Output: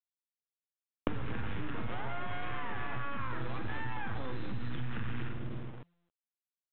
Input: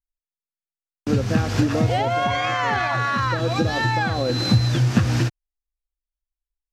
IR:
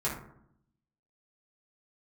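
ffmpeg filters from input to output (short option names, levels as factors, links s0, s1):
-filter_complex "[0:a]asplit=2[s0][s1];[s1]adelay=106,lowpass=f=830:p=1,volume=0.251,asplit=2[s2][s3];[s3]adelay=106,lowpass=f=830:p=1,volume=0.46,asplit=2[s4][s5];[s5]adelay=106,lowpass=f=830:p=1,volume=0.46,asplit=2[s6][s7];[s7]adelay=106,lowpass=f=830:p=1,volume=0.46,asplit=2[s8][s9];[s9]adelay=106,lowpass=f=830:p=1,volume=0.46[s10];[s0][s2][s4][s6][s8][s10]amix=inputs=6:normalize=0,aeval=exprs='max(val(0),0)':c=same,equalizer=f=630:w=1.8:g=-8.5,asplit=2[s11][s12];[s12]adelay=46,volume=0.376[s13];[s11][s13]amix=inputs=2:normalize=0,acrossover=split=83|920[s14][s15][s16];[s14]acompressor=threshold=0.0355:ratio=4[s17];[s15]acompressor=threshold=0.0126:ratio=4[s18];[s16]acompressor=threshold=0.0224:ratio=4[s19];[s17][s18][s19]amix=inputs=3:normalize=0,lowpass=f=1600:p=1,alimiter=level_in=1.58:limit=0.0631:level=0:latency=1:release=70,volume=0.631,acompressor=threshold=0.00398:ratio=16,acrusher=bits=8:dc=4:mix=0:aa=0.000001,aemphasis=mode=reproduction:type=50fm,bandreject=f=86.1:t=h:w=4,bandreject=f=172.2:t=h:w=4,volume=7.94" -ar 8000 -c:a pcm_mulaw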